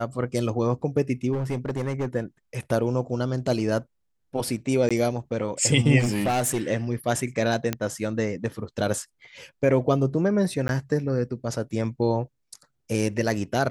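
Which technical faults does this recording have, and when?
1.32–2.07 clipped -23 dBFS
4.89–4.91 gap 16 ms
5.99–6.63 clipped -20 dBFS
7.73 pop -10 dBFS
10.68–10.69 gap

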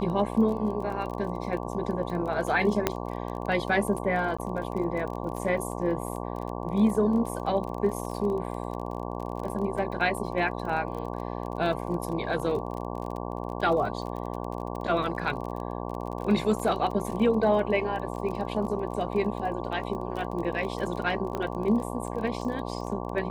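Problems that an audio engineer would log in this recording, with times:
buzz 60 Hz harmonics 19 -34 dBFS
crackle 28/s -34 dBFS
2.87 pop -8 dBFS
4.37–4.38 gap 15 ms
21.35 pop -18 dBFS

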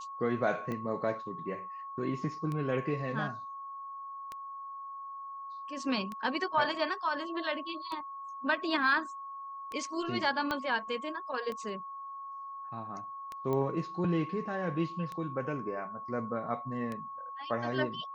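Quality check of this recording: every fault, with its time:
tick 33 1/3 rpm -25 dBFS
tone 1100 Hz -40 dBFS
10.51 pop -18 dBFS
13.53 pop -22 dBFS

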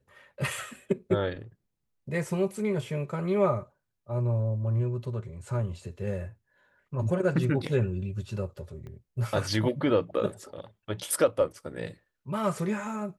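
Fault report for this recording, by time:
8.87 pop -33 dBFS

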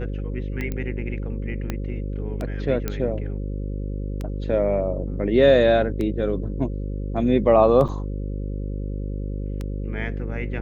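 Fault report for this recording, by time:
buzz 50 Hz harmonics 11 -28 dBFS
tick 33 1/3 rpm -17 dBFS
0.72 pop -16 dBFS
1.7 pop -13 dBFS
2.88 pop -11 dBFS
7.88–7.89 gap 6.5 ms

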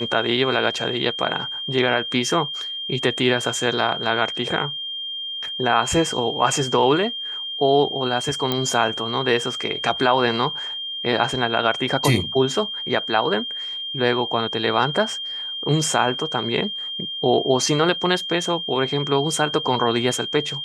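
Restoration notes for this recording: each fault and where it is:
tone 3200 Hz -27 dBFS
8.52 pop -7 dBFS

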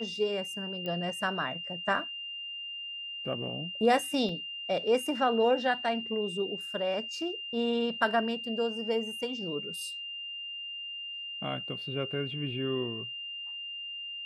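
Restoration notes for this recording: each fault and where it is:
tone 2800 Hz -37 dBFS
0.86 pop -24 dBFS
4.29 gap 3.1 ms

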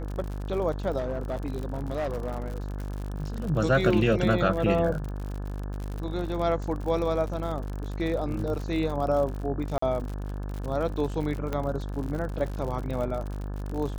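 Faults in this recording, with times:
buzz 50 Hz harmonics 35 -33 dBFS
crackle 69/s -33 dBFS
0.98–2.58 clipped -25.5 dBFS
9.78–9.82 gap 44 ms
11.53 pop -17 dBFS

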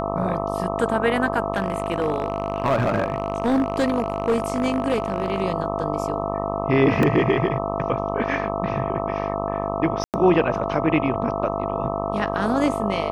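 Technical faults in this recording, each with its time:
buzz 50 Hz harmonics 26 -27 dBFS
tone 670 Hz -28 dBFS
1.52–5.44 clipped -15 dBFS
7.03 gap 2 ms
10.04–10.14 gap 98 ms

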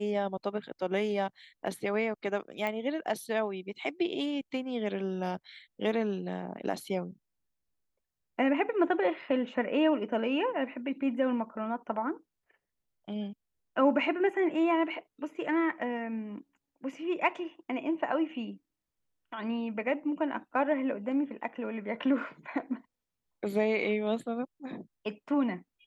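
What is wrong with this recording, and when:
2.67 pop -20 dBFS

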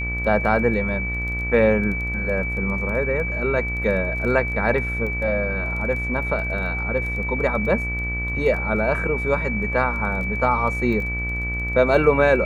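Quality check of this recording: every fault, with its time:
buzz 60 Hz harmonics 32 -28 dBFS
crackle 11/s -30 dBFS
tone 2300 Hz -26 dBFS

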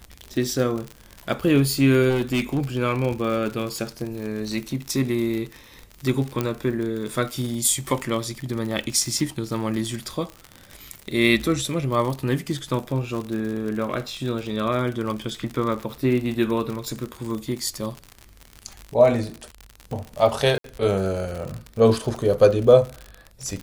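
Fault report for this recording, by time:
crackle 61/s -27 dBFS
2.09–2.6 clipped -18 dBFS
6.41 pop -10 dBFS
20.58–20.64 gap 63 ms

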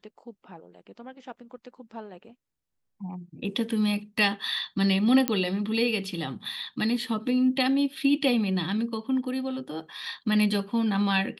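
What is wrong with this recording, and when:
5.28 pop -7 dBFS

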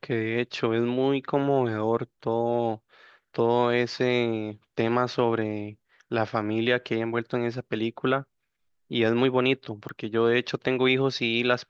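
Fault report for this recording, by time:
9.89 pop -26 dBFS

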